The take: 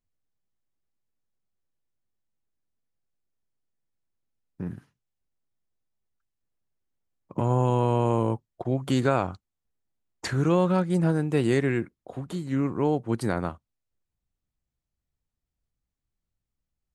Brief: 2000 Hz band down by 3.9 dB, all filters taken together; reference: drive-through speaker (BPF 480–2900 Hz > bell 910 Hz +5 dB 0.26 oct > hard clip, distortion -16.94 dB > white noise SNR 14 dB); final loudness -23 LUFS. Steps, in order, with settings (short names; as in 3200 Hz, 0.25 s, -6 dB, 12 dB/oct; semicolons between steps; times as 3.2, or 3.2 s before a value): BPF 480–2900 Hz; bell 910 Hz +5 dB 0.26 oct; bell 2000 Hz -4.5 dB; hard clip -19.5 dBFS; white noise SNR 14 dB; gain +9 dB